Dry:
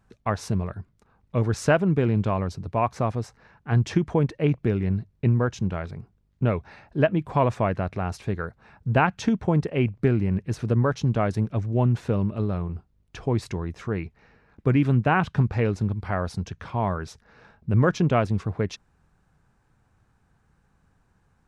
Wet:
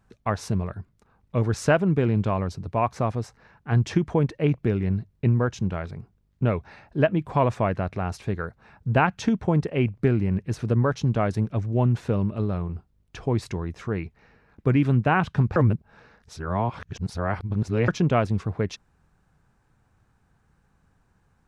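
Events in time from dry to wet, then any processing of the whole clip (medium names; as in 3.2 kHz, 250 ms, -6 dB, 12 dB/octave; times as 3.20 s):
15.56–17.88 s: reverse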